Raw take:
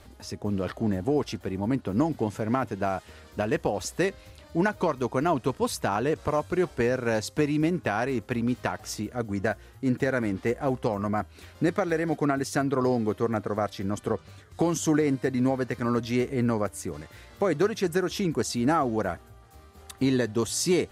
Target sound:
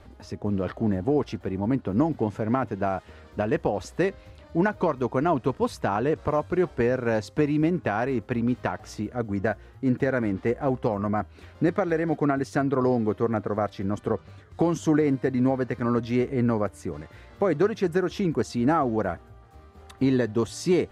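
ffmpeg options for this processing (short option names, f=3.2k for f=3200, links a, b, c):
-af "lowpass=f=1.9k:p=1,volume=2dB"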